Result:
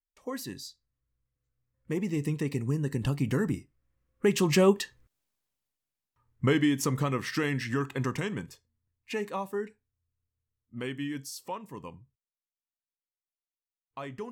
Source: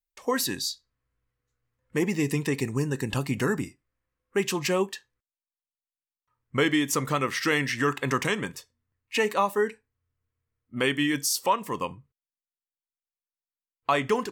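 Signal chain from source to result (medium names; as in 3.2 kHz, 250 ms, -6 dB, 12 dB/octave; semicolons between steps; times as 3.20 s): Doppler pass-by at 5.22 s, 9 m/s, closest 2.8 m; bass shelf 320 Hz +11.5 dB; in parallel at +1 dB: compression, threshold -37 dBFS, peak gain reduction 14.5 dB; on the sum: trim +4 dB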